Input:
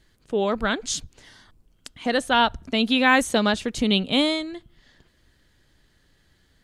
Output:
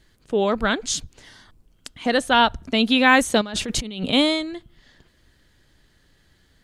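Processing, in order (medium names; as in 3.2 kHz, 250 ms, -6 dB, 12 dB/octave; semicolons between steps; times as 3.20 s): 3.41–4.13 s: compressor with a negative ratio -31 dBFS, ratio -1; trim +2.5 dB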